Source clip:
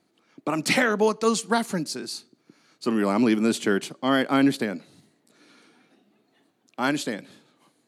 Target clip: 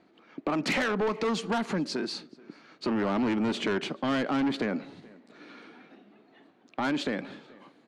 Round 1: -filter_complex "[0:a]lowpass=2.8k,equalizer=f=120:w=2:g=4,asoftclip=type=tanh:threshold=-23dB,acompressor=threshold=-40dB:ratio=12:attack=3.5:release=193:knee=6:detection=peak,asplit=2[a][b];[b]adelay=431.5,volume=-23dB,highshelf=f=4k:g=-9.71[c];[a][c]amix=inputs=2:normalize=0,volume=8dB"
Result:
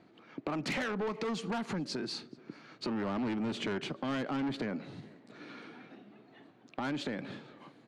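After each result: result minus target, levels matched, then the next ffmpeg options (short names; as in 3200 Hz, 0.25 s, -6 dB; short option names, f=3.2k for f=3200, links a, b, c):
compressor: peak gain reduction +7 dB; 125 Hz band +3.5 dB
-filter_complex "[0:a]lowpass=2.8k,equalizer=f=120:w=2:g=4,asoftclip=type=tanh:threshold=-23dB,acompressor=threshold=-32.5dB:ratio=12:attack=3.5:release=193:knee=6:detection=peak,asplit=2[a][b];[b]adelay=431.5,volume=-23dB,highshelf=f=4k:g=-9.71[c];[a][c]amix=inputs=2:normalize=0,volume=8dB"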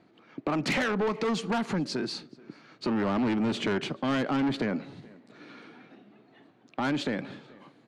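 125 Hz band +3.0 dB
-filter_complex "[0:a]lowpass=2.8k,equalizer=f=120:w=2:g=-7.5,asoftclip=type=tanh:threshold=-23dB,acompressor=threshold=-32.5dB:ratio=12:attack=3.5:release=193:knee=6:detection=peak,asplit=2[a][b];[b]adelay=431.5,volume=-23dB,highshelf=f=4k:g=-9.71[c];[a][c]amix=inputs=2:normalize=0,volume=8dB"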